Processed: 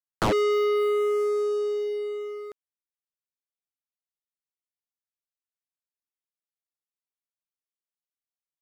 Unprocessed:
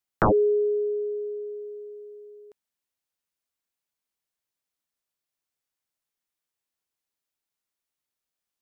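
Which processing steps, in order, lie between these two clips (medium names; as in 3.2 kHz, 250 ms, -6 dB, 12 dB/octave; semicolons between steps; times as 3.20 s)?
waveshaping leveller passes 5; loudspeaker Doppler distortion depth 0.13 ms; trim -6.5 dB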